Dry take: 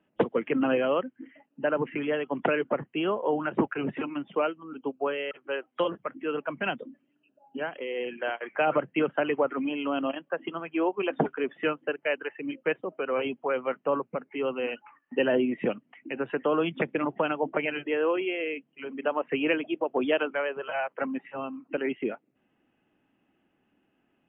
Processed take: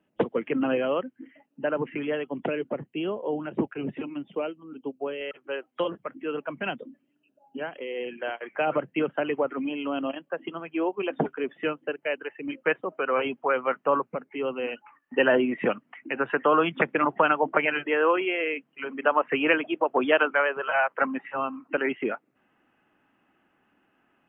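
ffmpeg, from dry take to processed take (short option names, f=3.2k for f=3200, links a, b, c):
-af "asetnsamples=n=441:p=0,asendcmd='2.26 equalizer g -9.5;5.21 equalizer g -2;12.48 equalizer g 7.5;14.15 equalizer g 0;15.14 equalizer g 10.5',equalizer=f=1.3k:t=o:w=1.7:g=-1.5"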